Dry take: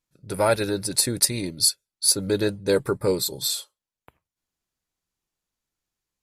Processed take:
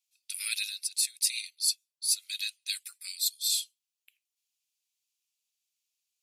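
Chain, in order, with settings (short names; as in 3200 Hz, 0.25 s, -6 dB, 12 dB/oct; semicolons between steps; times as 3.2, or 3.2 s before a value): elliptic high-pass 2500 Hz, stop band 80 dB; reverse; compressor 10:1, threshold -28 dBFS, peak gain reduction 14.5 dB; reverse; gain +3.5 dB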